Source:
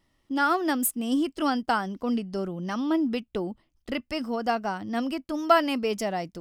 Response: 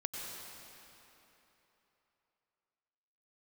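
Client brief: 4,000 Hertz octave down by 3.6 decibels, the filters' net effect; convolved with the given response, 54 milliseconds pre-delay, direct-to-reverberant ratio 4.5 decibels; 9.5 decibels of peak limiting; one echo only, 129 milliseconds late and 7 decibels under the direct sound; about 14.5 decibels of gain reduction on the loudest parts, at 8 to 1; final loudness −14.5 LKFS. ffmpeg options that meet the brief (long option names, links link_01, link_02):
-filter_complex "[0:a]equalizer=frequency=4000:width_type=o:gain=-5.5,acompressor=threshold=-29dB:ratio=8,alimiter=level_in=3dB:limit=-24dB:level=0:latency=1,volume=-3dB,aecho=1:1:129:0.447,asplit=2[link_01][link_02];[1:a]atrim=start_sample=2205,adelay=54[link_03];[link_02][link_03]afir=irnorm=-1:irlink=0,volume=-6dB[link_04];[link_01][link_04]amix=inputs=2:normalize=0,volume=19dB"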